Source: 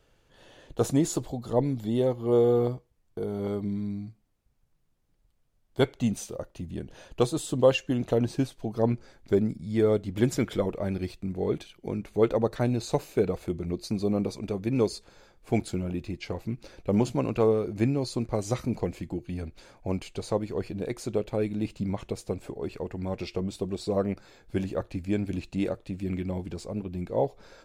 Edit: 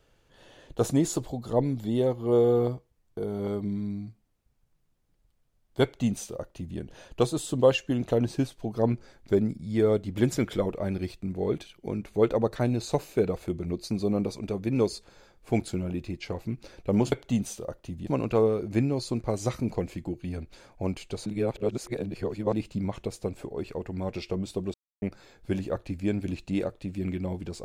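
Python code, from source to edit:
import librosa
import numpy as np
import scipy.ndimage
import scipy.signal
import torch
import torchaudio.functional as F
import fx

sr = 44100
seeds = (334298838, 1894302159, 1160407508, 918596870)

y = fx.edit(x, sr, fx.duplicate(start_s=5.83, length_s=0.95, to_s=17.12),
    fx.reverse_span(start_s=20.31, length_s=1.27),
    fx.silence(start_s=23.79, length_s=0.28), tone=tone)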